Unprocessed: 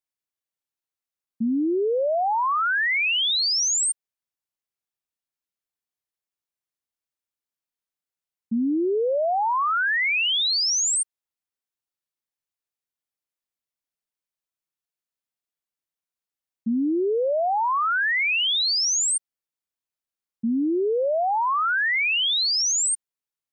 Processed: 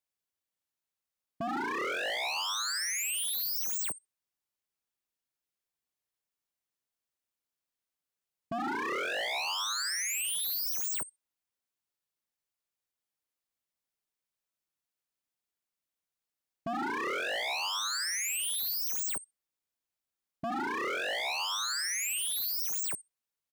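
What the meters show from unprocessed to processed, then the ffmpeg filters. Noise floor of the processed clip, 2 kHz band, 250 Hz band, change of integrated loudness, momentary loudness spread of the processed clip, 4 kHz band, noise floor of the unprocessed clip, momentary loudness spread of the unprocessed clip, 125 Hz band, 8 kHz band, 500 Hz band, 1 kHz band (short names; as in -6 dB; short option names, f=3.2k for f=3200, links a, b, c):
under -85 dBFS, -11.0 dB, -16.5 dB, -10.0 dB, 6 LU, -11.0 dB, under -85 dBFS, 7 LU, n/a, -9.0 dB, -15.5 dB, -12.0 dB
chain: -filter_complex "[0:a]asplit=2[a][b];[b]adelay=66,lowpass=f=910:p=1,volume=-8dB,asplit=2[c][d];[d]adelay=66,lowpass=f=910:p=1,volume=0.47,asplit=2[e][f];[f]adelay=66,lowpass=f=910:p=1,volume=0.47,asplit=2[g][h];[h]adelay=66,lowpass=f=910:p=1,volume=0.47,asplit=2[i][j];[j]adelay=66,lowpass=f=910:p=1,volume=0.47[k];[a][c][e][g][i][k]amix=inputs=6:normalize=0,aeval=exprs='0.0376*(abs(mod(val(0)/0.0376+3,4)-2)-1)':c=same"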